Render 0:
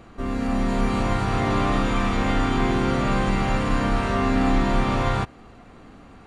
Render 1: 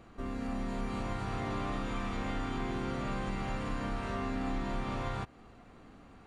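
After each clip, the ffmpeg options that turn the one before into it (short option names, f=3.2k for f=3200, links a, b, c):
-af "acompressor=threshold=-27dB:ratio=2,volume=-8.5dB"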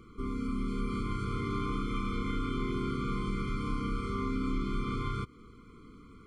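-af "afftfilt=real='re*eq(mod(floor(b*sr/1024/500),2),0)':imag='im*eq(mod(floor(b*sr/1024/500),2),0)':win_size=1024:overlap=0.75,volume=3dB"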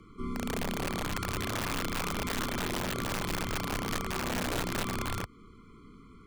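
-af "afreqshift=-16,aeval=exprs='(mod(21.1*val(0)+1,2)-1)/21.1':c=same"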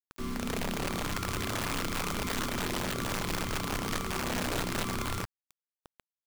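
-af "acrusher=bits=6:mix=0:aa=0.000001"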